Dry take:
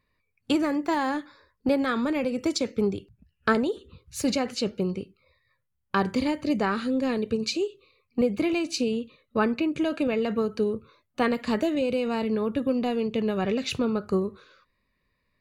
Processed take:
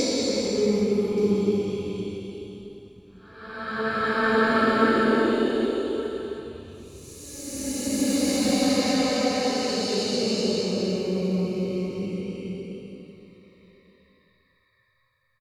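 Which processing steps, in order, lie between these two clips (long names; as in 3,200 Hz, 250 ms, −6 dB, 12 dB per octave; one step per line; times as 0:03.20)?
peak hold with a decay on every bin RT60 0.31 s
extreme stretch with random phases 5.1×, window 0.50 s, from 0:02.62
on a send: single-tap delay 1,176 ms −20.5 dB
on the sum: level +2 dB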